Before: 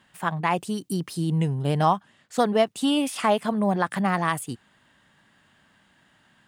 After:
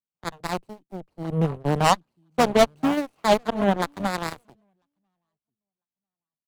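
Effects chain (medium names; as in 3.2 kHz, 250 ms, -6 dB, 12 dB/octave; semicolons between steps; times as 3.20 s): median filter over 25 samples; on a send: feedback delay 997 ms, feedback 23%, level -16 dB; on the sum: Chebyshev shaper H 5 -12 dB, 7 -9 dB, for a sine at -10 dBFS; three bands expanded up and down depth 70%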